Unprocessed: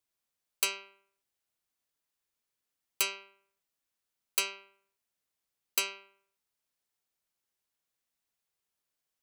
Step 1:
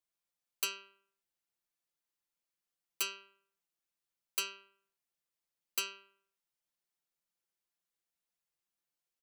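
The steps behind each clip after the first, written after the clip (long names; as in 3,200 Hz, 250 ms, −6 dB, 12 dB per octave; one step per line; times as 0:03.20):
comb filter 5.8 ms, depth 79%
level −7.5 dB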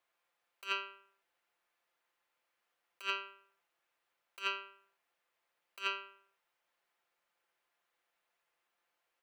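in parallel at −9 dB: centre clipping without the shift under −35.5 dBFS
on the sum: three-way crossover with the lows and the highs turned down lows −17 dB, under 420 Hz, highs −17 dB, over 2,800 Hz
compressor whose output falls as the input rises −47 dBFS, ratio −0.5
level +10.5 dB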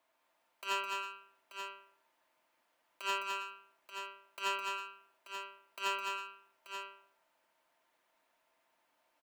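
hard clipping −34 dBFS, distortion −8 dB
hollow resonant body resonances 270/630/920 Hz, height 13 dB, ringing for 55 ms
on a send: multi-tap delay 210/323/883 ms −4.5/−14.5/−8.5 dB
on the sum: level +3 dB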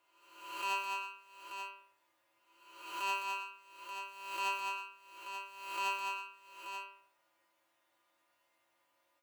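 peak hold with a rise ahead of every peak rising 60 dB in 0.98 s
tuned comb filter 110 Hz, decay 0.16 s, harmonics odd, mix 90%
level +7 dB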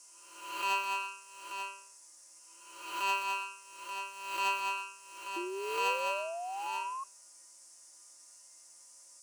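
sound drawn into the spectrogram rise, 0:05.36–0:07.04, 340–1,100 Hz −43 dBFS
noise in a band 5,200–10,000 Hz −61 dBFS
level +4 dB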